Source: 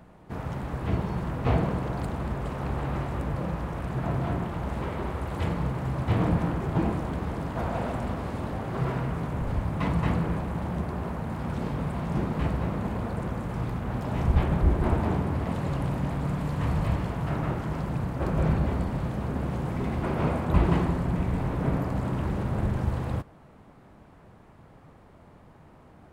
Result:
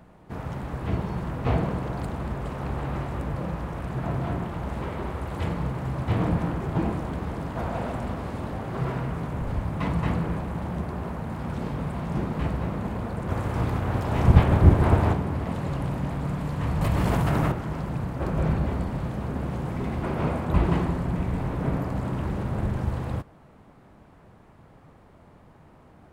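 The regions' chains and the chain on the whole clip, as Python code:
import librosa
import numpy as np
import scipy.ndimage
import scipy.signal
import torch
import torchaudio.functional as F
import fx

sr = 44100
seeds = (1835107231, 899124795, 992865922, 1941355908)

y = fx.spec_clip(x, sr, under_db=13, at=(13.28, 15.12), fade=0.02)
y = fx.peak_eq(y, sr, hz=93.0, db=14.0, octaves=1.1, at=(13.28, 15.12), fade=0.02)
y = fx.chain(y, sr, fx.high_shelf(hz=6800.0, db=9.5),
    fx.env_flatten(amount_pct=100), at=(16.81, 17.52))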